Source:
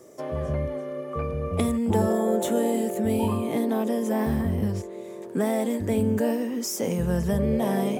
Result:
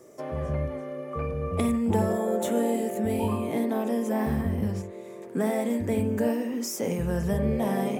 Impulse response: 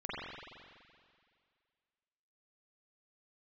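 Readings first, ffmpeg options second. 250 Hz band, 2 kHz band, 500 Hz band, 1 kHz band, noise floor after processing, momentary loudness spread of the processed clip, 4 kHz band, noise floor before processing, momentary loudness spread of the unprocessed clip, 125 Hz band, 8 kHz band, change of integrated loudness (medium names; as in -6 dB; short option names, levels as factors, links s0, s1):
-2.0 dB, -0.5 dB, -2.0 dB, -1.0 dB, -41 dBFS, 8 LU, -3.5 dB, -38 dBFS, 8 LU, -2.0 dB, -3.0 dB, -2.0 dB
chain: -filter_complex "[0:a]asplit=2[s0][s1];[s1]highshelf=f=3500:t=q:w=3:g=-9.5[s2];[1:a]atrim=start_sample=2205,afade=t=out:st=0.15:d=0.01,atrim=end_sample=7056[s3];[s2][s3]afir=irnorm=-1:irlink=0,volume=0.376[s4];[s0][s4]amix=inputs=2:normalize=0,volume=0.668"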